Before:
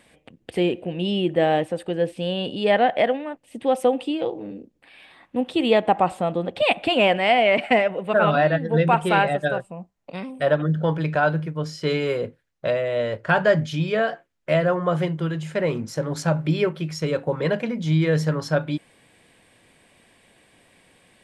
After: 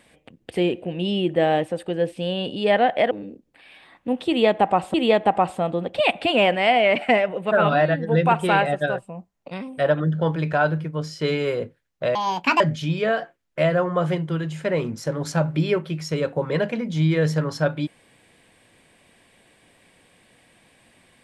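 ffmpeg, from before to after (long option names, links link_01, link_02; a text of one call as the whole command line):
ffmpeg -i in.wav -filter_complex "[0:a]asplit=5[link_01][link_02][link_03][link_04][link_05];[link_01]atrim=end=3.112[link_06];[link_02]atrim=start=4.388:end=6.222[link_07];[link_03]atrim=start=5.558:end=12.774[link_08];[link_04]atrim=start=12.77:end=13.51,asetpts=PTS-STARTPTS,asetrate=71883,aresample=44100[link_09];[link_05]atrim=start=13.506[link_10];[link_06][link_07]acrossfade=duration=0.004:curve1=hsin:curve2=hsin[link_11];[link_11][link_08]acrossfade=duration=0.004:curve1=hsin:curve2=hsin[link_12];[link_12][link_09]acrossfade=duration=0.004:curve1=hsin:curve2=hsin[link_13];[link_13][link_10]acrossfade=duration=0.004:curve1=hsin:curve2=hsin" out.wav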